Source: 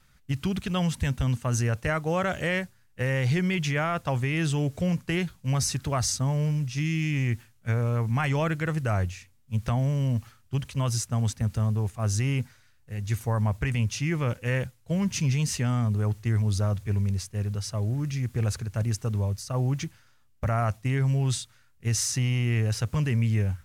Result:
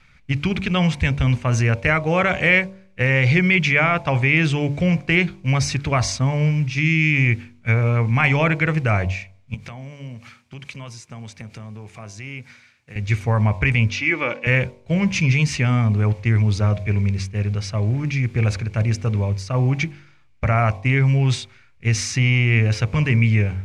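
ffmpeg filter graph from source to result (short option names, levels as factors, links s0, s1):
-filter_complex "[0:a]asettb=1/sr,asplit=3[s0][s1][s2];[s0]atrim=end=9.544[s3];[s1]atrim=start=9.54:end=12.96,asetpts=PTS-STARTPTS,afade=t=in:d=0.004:c=qsin,afade=t=out:st=3.416:d=0.004:c=qsin,highpass=140,highshelf=f=4700:g=7,acompressor=threshold=0.00794:ratio=4:attack=3.2:release=140:knee=1:detection=peak[s4];[s2]atrim=start=12.956[s5];[s3][s4]acrossfade=d=0.004:c1=hsin:c2=qsin[s6];[s6][s5]acrossfade=d=0.004:c1=qsin:c2=hsin,asettb=1/sr,asplit=3[s7][s8][s9];[s7]atrim=end=13.904[s10];[s8]atrim=start=13.9:end=14.47,asetpts=PTS-STARTPTS,afade=t=in:d=0.004:c=qsin,afade=t=out:st=0.566:d=0.004:c=qsin,highpass=320,lowpass=5700,aecho=1:1:3.5:0.38,atrim=end_sample=25137[s11];[s9]atrim=start=14.466[s12];[s10][s11]acrossfade=d=0.004:c1=hsin:c2=qsin[s13];[s13][s12]acrossfade=d=0.004:c1=qsin:c2=hsin,lowpass=4700,equalizer=f=2300:t=o:w=0.3:g=13,bandreject=f=48.04:t=h:w=4,bandreject=f=96.08:t=h:w=4,bandreject=f=144.12:t=h:w=4,bandreject=f=192.16:t=h:w=4,bandreject=f=240.2:t=h:w=4,bandreject=f=288.24:t=h:w=4,bandreject=f=336.28:t=h:w=4,bandreject=f=384.32:t=h:w=4,bandreject=f=432.36:t=h:w=4,bandreject=f=480.4:t=h:w=4,bandreject=f=528.44:t=h:w=4,bandreject=f=576.48:t=h:w=4,bandreject=f=624.52:t=h:w=4,bandreject=f=672.56:t=h:w=4,bandreject=f=720.6:t=h:w=4,bandreject=f=768.64:t=h:w=4,bandreject=f=816.68:t=h:w=4,bandreject=f=864.72:t=h:w=4,bandreject=f=912.76:t=h:w=4,bandreject=f=960.8:t=h:w=4,bandreject=f=1008.84:t=h:w=4,bandreject=f=1056.88:t=h:w=4,bandreject=f=1104.92:t=h:w=4,volume=2.37"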